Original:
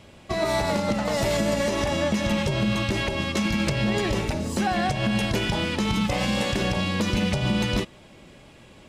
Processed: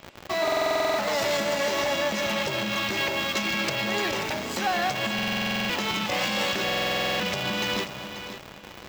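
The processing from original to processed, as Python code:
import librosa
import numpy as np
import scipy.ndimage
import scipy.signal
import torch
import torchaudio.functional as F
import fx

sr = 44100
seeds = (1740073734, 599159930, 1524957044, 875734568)

p1 = fx.rev_spring(x, sr, rt60_s=2.1, pass_ms=(30,), chirp_ms=55, drr_db=19.5)
p2 = fx.schmitt(p1, sr, flips_db=-42.0)
p3 = p1 + (p2 * librosa.db_to_amplitude(-6.5))
p4 = fx.highpass(p3, sr, hz=780.0, slope=6)
p5 = fx.peak_eq(p4, sr, hz=9700.0, db=-12.5, octaves=0.46)
p6 = p5 + fx.echo_feedback(p5, sr, ms=536, feedback_pct=26, wet_db=-11, dry=0)
y = fx.buffer_glitch(p6, sr, at_s=(0.43, 5.14, 6.64), block=2048, repeats=11)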